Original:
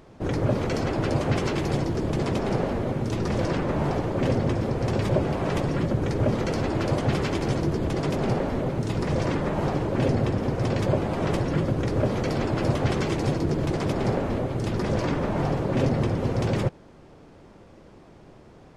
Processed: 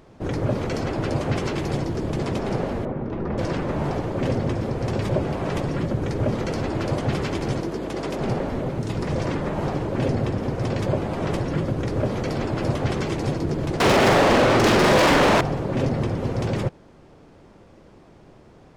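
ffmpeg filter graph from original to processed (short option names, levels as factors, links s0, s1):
-filter_complex "[0:a]asettb=1/sr,asplit=3[s0][s1][s2];[s0]atrim=end=2.854[s3];[s1]atrim=start=2.85:end=3.38,asetpts=PTS-STARTPTS,afade=t=in:d=0.004:c=qsin,afade=t=out:st=0.526:d=0.004:c=qsin,lowpass=1600,equalizer=f=110:w=3.8:g=-8.5[s4];[s2]atrim=start=3.376[s5];[s3][s4]acrossfade=d=0.004:c1=hsin:c2=qsin[s6];[s6][s5]acrossfade=d=0.004:c1=qsin:c2=hsin,asettb=1/sr,asplit=3[s7][s8][s9];[s7]atrim=end=7.614[s10];[s8]atrim=start=7.61:end=8.2,asetpts=PTS-STARTPTS,afade=t=in:d=0.004:c=qsin,afade=t=out:st=0.586:d=0.004:c=qsin,highpass=230,aeval=exprs='val(0)+0.01*(sin(2*PI*50*n/s)+sin(2*PI*2*50*n/s)/2+sin(2*PI*3*50*n/s)/3+sin(2*PI*4*50*n/s)/4+sin(2*PI*5*50*n/s)/5)':c=same[s11];[s9]atrim=start=8.196[s12];[s10][s11]acrossfade=d=0.004:c1=hsin:c2=qsin[s13];[s13][s12]acrossfade=d=0.004:c1=qsin:c2=hsin,asettb=1/sr,asplit=3[s14][s15][s16];[s14]atrim=end=13.804[s17];[s15]atrim=start=13.8:end=15.41,asetpts=PTS-STARTPTS,afade=t=in:d=0.004:c=qsin,afade=t=out:st=1.606:d=0.004:c=qsin,lowpass=7300,asplit=2[s18][s19];[s19]highpass=f=720:p=1,volume=63.1,asoftclip=type=tanh:threshold=0.266[s20];[s18][s20]amix=inputs=2:normalize=0,lowpass=f=4600:p=1,volume=0.501,asplit=2[s21][s22];[s22]adelay=43,volume=0.631[s23];[s21][s23]amix=inputs=2:normalize=0,atrim=end_sample=71001[s24];[s16]atrim=start=15.406[s25];[s17][s24]acrossfade=d=0.004:c1=hsin:c2=qsin[s26];[s26][s25]acrossfade=d=0.004:c1=qsin:c2=hsin"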